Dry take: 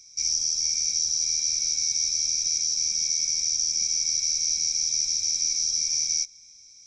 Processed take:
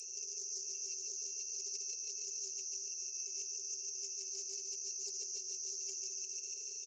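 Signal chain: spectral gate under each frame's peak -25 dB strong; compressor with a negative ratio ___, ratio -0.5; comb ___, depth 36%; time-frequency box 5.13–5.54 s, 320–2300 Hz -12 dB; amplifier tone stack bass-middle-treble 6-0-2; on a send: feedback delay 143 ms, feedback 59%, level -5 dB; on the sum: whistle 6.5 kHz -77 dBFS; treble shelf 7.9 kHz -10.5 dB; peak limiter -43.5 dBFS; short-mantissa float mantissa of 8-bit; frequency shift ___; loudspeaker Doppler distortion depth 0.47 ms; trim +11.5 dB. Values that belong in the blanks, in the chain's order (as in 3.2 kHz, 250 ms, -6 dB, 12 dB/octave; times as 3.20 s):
-33 dBFS, 5.9 ms, +370 Hz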